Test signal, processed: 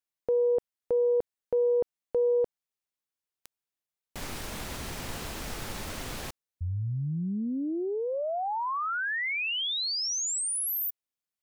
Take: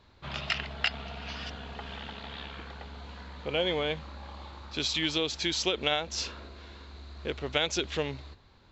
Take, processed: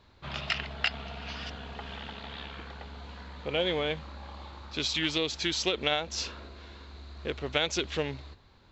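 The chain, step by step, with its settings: loudspeaker Doppler distortion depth 0.1 ms

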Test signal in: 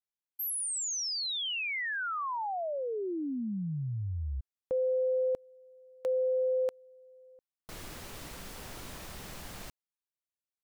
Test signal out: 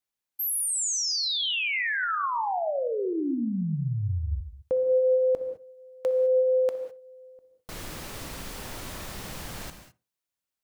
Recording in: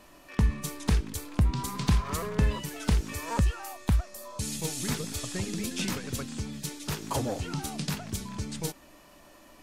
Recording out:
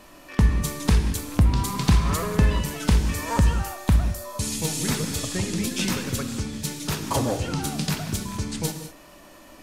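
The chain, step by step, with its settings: tape echo 61 ms, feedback 31%, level -15 dB, low-pass 1.3 kHz; gated-style reverb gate 230 ms flat, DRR 7.5 dB; trim +5.5 dB

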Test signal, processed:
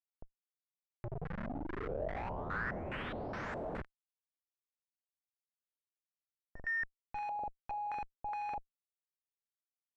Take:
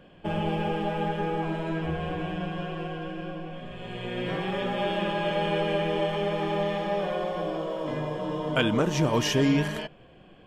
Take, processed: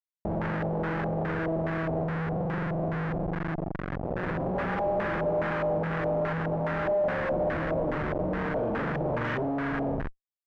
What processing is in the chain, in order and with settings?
flutter echo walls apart 7.4 m, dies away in 1.1 s; Schmitt trigger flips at -29.5 dBFS; LFO low-pass square 2.4 Hz 670–1700 Hz; trim -8 dB

